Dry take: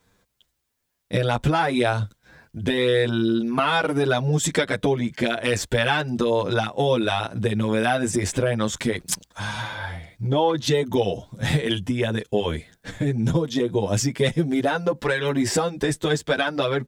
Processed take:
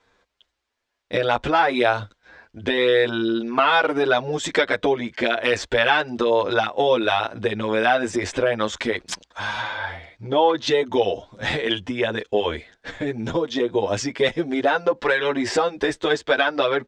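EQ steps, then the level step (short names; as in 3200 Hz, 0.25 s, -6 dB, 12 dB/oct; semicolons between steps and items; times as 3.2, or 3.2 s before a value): air absorption 140 m; bell 150 Hz -12.5 dB 1.2 oct; low shelf 200 Hz -8.5 dB; +5.5 dB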